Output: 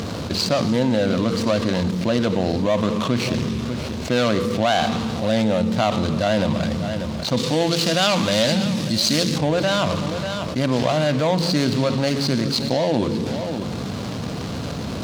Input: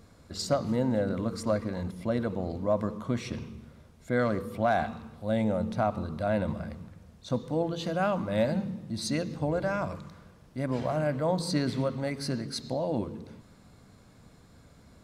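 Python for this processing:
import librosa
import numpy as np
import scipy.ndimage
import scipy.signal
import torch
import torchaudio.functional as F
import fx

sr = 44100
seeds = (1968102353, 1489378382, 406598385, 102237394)

y = scipy.signal.medfilt(x, 25)
y = fx.high_shelf(y, sr, hz=2400.0, db=11.0, at=(7.37, 9.38))
y = scipy.signal.sosfilt(scipy.signal.butter(2, 100.0, 'highpass', fs=sr, output='sos'), y)
y = fx.peak_eq(y, sr, hz=4600.0, db=14.5, octaves=2.0)
y = y + 10.0 ** (-22.0 / 20.0) * np.pad(y, (int(592 * sr / 1000.0), 0))[:len(y)]
y = fx.env_flatten(y, sr, amount_pct=70)
y = F.gain(torch.from_numpy(y), 4.0).numpy()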